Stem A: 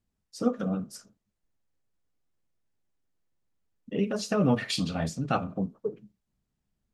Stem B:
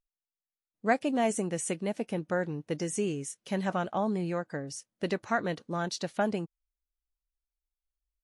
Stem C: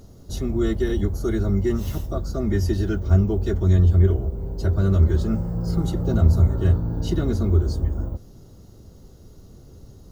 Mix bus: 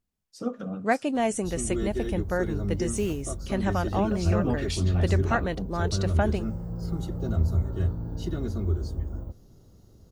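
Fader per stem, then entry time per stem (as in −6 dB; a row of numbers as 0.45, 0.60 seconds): −4.5, +2.0, −8.0 decibels; 0.00, 0.00, 1.15 seconds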